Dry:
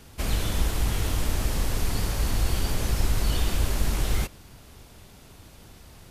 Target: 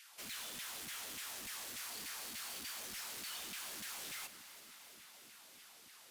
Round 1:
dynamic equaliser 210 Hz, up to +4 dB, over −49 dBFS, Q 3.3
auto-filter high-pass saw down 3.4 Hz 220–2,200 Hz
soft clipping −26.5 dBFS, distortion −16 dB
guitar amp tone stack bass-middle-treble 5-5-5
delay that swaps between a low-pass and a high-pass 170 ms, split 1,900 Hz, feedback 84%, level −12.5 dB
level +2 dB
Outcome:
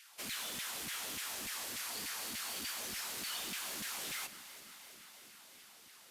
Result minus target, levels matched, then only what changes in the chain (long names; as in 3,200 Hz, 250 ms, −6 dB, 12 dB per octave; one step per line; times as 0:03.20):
soft clipping: distortion −9 dB
change: soft clipping −36.5 dBFS, distortion −7 dB